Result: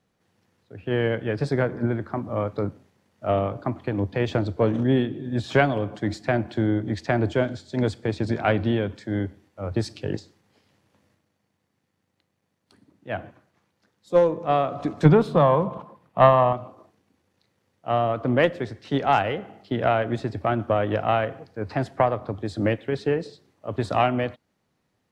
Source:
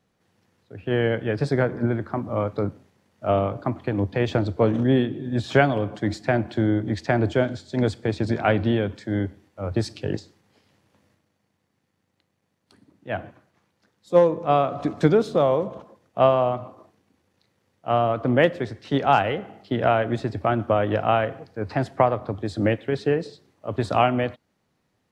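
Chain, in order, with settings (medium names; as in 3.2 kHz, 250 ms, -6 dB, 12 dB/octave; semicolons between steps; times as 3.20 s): 15.05–16.53 s: fifteen-band graphic EQ 160 Hz +11 dB, 1 kHz +10 dB, 2.5 kHz +3 dB, 6.3 kHz -7 dB; Chebyshev shaper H 2 -14 dB, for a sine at 0.5 dBFS; trim -1.5 dB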